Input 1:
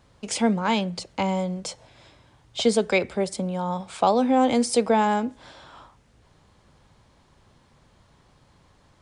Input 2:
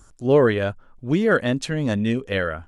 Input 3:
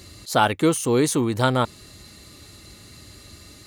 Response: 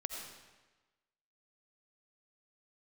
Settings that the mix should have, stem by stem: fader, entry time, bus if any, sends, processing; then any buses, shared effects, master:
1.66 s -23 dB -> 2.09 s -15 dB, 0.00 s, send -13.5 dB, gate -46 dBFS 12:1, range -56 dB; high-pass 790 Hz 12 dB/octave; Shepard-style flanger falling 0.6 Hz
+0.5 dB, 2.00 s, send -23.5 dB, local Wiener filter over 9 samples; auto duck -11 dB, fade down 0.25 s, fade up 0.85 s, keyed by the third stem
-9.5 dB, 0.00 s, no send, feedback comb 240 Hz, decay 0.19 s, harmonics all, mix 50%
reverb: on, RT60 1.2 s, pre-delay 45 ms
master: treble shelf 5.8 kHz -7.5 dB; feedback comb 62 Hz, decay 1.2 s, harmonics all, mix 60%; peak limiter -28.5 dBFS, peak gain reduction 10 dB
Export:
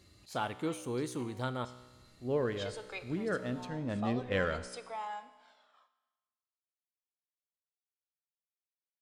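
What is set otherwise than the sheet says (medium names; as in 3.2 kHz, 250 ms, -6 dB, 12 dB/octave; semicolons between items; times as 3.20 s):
stem 1 -23.0 dB -> -14.0 dB; stem 3: missing feedback comb 240 Hz, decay 0.19 s, harmonics all, mix 50%; master: missing peak limiter -28.5 dBFS, peak gain reduction 10 dB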